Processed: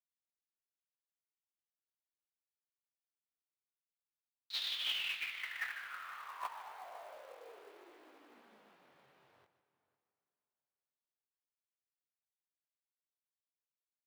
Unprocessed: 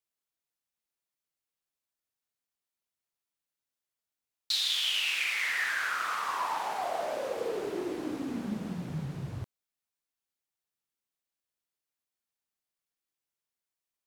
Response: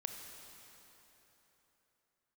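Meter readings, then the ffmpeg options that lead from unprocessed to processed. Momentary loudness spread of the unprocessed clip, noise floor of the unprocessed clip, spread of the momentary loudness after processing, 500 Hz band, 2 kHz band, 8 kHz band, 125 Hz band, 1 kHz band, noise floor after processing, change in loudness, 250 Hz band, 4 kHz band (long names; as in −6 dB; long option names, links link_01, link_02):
10 LU, below −85 dBFS, 20 LU, −21.0 dB, −11.5 dB, −17.5 dB, below −35 dB, −14.5 dB, below −85 dBFS, −9.0 dB, −31.5 dB, −9.0 dB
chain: -filter_complex "[0:a]flanger=delay=17:depth=6.2:speed=0.6,agate=range=-30dB:threshold=-29dB:ratio=16:detection=peak,asplit=2[link_01][link_02];[link_02]adelay=501.5,volume=-18dB,highshelf=frequency=4000:gain=-11.3[link_03];[link_01][link_03]amix=inputs=2:normalize=0,asplit=2[link_04][link_05];[1:a]atrim=start_sample=2205,lowpass=8100,adelay=149[link_06];[link_05][link_06]afir=irnorm=-1:irlink=0,volume=-11.5dB[link_07];[link_04][link_07]amix=inputs=2:normalize=0,asplit=2[link_08][link_09];[link_09]highpass=frequency=720:poles=1,volume=10dB,asoftclip=type=tanh:threshold=-40dB[link_10];[link_08][link_10]amix=inputs=2:normalize=0,lowpass=frequency=7500:poles=1,volume=-6dB,acrossover=split=370 4400:gain=0.0891 1 0.126[link_11][link_12][link_13];[link_11][link_12][link_13]amix=inputs=3:normalize=0,acrusher=bits=4:mode=log:mix=0:aa=0.000001,volume=11.5dB"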